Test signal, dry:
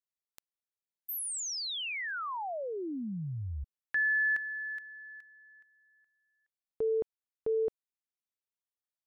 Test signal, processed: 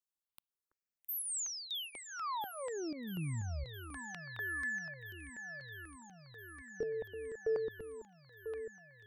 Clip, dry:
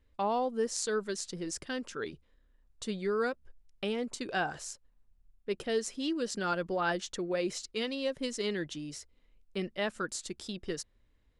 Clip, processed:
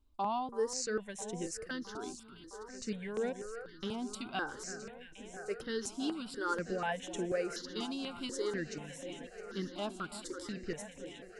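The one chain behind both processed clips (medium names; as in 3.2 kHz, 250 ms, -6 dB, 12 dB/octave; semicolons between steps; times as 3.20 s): on a send: echo whose repeats swap between lows and highs 331 ms, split 1.8 kHz, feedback 90%, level -12 dB; on the sum: stepped phaser 4.1 Hz 500–4600 Hz; trim -1 dB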